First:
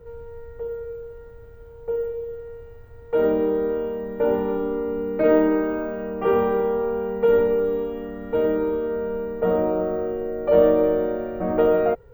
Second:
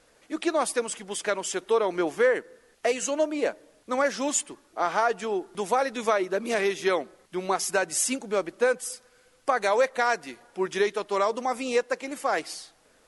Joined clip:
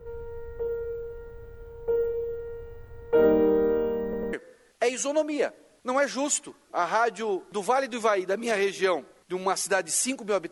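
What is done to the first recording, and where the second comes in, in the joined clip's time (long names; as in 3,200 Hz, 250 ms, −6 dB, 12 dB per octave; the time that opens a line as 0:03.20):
first
0:04.03: stutter in place 0.10 s, 3 plays
0:04.33: continue with second from 0:02.36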